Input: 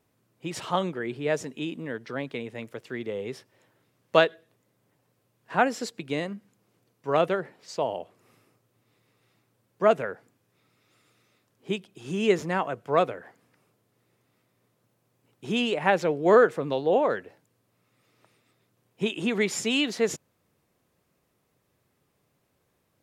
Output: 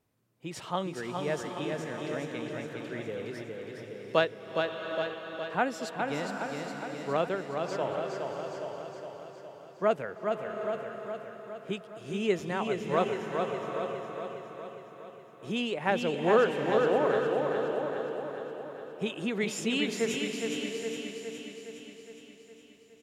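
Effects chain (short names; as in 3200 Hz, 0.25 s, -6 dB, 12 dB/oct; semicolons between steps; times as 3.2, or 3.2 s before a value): low shelf 120 Hz +4 dB; feedback echo 0.413 s, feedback 60%, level -5 dB; bloom reverb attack 0.78 s, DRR 6 dB; gain -6 dB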